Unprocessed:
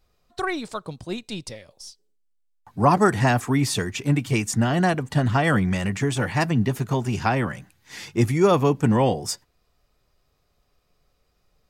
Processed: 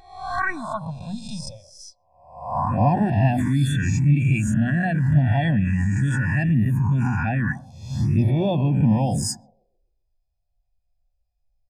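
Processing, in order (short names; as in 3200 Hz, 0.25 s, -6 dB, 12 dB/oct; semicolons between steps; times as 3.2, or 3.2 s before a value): spectral swells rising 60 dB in 1.12 s; notches 60/120/180 Hz; on a send: narrowing echo 0.132 s, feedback 56%, band-pass 320 Hz, level -11 dB; on the sum: envelope phaser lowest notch 230 Hz, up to 1300 Hz, full sweep at -13.5 dBFS; comb 1.2 ms, depth 71%; in parallel at -2 dB: negative-ratio compressor -25 dBFS, ratio -0.5; on the sum: spectral expander 1.5:1; gain -3 dB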